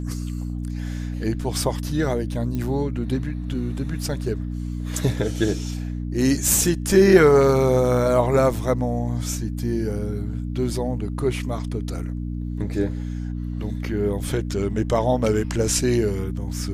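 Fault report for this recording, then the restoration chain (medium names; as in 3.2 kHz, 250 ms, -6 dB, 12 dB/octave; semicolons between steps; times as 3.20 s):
hum 60 Hz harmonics 5 -28 dBFS
2.55 s: pop -17 dBFS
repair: de-click; de-hum 60 Hz, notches 5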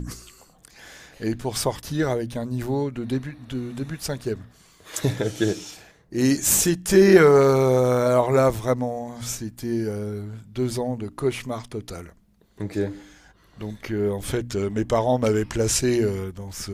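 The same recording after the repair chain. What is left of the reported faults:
nothing left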